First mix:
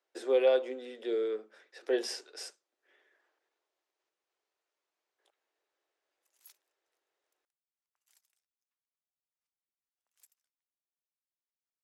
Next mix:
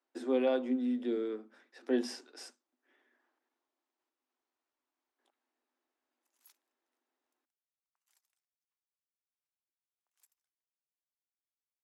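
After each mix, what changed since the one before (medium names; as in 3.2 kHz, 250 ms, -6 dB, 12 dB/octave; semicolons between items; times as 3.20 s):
speech: remove steep high-pass 340 Hz 48 dB/octave; master: add rippled Chebyshev high-pass 240 Hz, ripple 6 dB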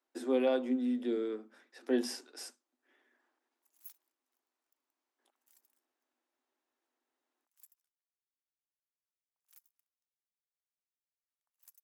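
background: entry -2.60 s; master: remove distance through air 50 m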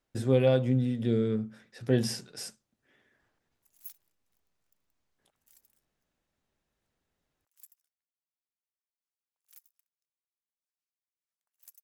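master: remove rippled Chebyshev high-pass 240 Hz, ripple 6 dB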